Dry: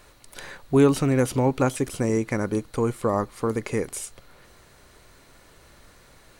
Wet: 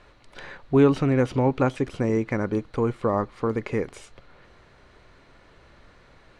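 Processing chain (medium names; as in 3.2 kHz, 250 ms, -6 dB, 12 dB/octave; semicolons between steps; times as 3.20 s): low-pass 3.4 kHz 12 dB/octave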